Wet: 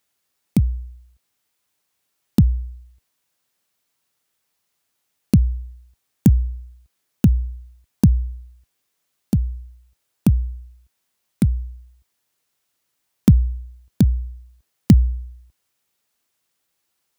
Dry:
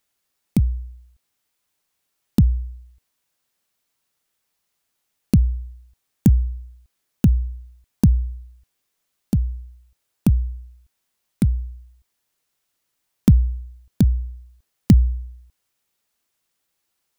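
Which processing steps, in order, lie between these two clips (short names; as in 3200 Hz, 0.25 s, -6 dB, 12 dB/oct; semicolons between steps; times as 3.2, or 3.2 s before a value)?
HPF 53 Hz; gain +1.5 dB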